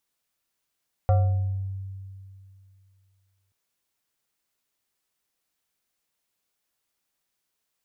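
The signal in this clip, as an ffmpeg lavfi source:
-f lavfi -i "aevalsrc='0.178*pow(10,-3*t/2.55)*sin(2*PI*96.4*t+0.69*pow(10,-3*t/0.98)*sin(2*PI*6.59*96.4*t))':d=2.43:s=44100"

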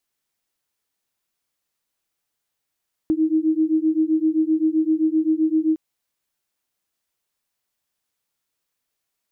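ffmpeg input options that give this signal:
-f lavfi -i "aevalsrc='0.106*(sin(2*PI*312*t)+sin(2*PI*319.7*t))':d=2.66:s=44100"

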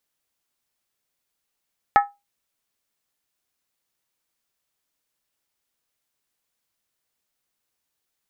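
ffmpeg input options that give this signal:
-f lavfi -i "aevalsrc='0.398*pow(10,-3*t/0.22)*sin(2*PI*811*t)+0.211*pow(10,-3*t/0.174)*sin(2*PI*1292.7*t)+0.112*pow(10,-3*t/0.151)*sin(2*PI*1732.3*t)+0.0596*pow(10,-3*t/0.145)*sin(2*PI*1862.1*t)+0.0316*pow(10,-3*t/0.135)*sin(2*PI*2151.6*t)':d=0.63:s=44100"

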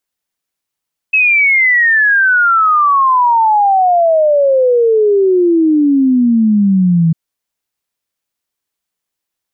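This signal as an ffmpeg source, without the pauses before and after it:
-f lavfi -i "aevalsrc='0.447*clip(min(t,6-t)/0.01,0,1)*sin(2*PI*2600*6/log(160/2600)*(exp(log(160/2600)*t/6)-1))':d=6:s=44100"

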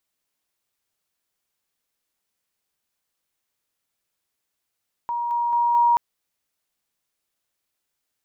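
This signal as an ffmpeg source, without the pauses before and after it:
-f lavfi -i "aevalsrc='pow(10,(-23+3*floor(t/0.22))/20)*sin(2*PI*949*t)':d=0.88:s=44100"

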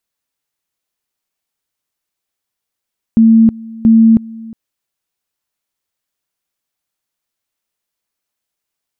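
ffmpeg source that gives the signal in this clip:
-f lavfi -i "aevalsrc='pow(10,(-3.5-22.5*gte(mod(t,0.68),0.32))/20)*sin(2*PI*225*t)':d=1.36:s=44100"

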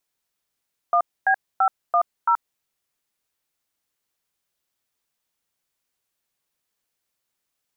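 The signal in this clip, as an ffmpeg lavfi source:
-f lavfi -i "aevalsrc='0.133*clip(min(mod(t,0.336),0.078-mod(t,0.336))/0.002,0,1)*(eq(floor(t/0.336),0)*(sin(2*PI*697*mod(t,0.336))+sin(2*PI*1209*mod(t,0.336)))+eq(floor(t/0.336),1)*(sin(2*PI*770*mod(t,0.336))+sin(2*PI*1633*mod(t,0.336)))+eq(floor(t/0.336),2)*(sin(2*PI*770*mod(t,0.336))+sin(2*PI*1336*mod(t,0.336)))+eq(floor(t/0.336),3)*(sin(2*PI*697*mod(t,0.336))+sin(2*PI*1209*mod(t,0.336)))+eq(floor(t/0.336),4)*(sin(2*PI*941*mod(t,0.336))+sin(2*PI*1336*mod(t,0.336))))':d=1.68:s=44100"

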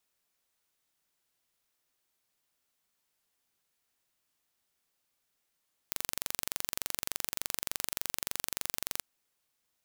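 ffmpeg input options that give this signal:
-f lavfi -i "aevalsrc='0.562*eq(mod(n,1885),0)':d=3.1:s=44100"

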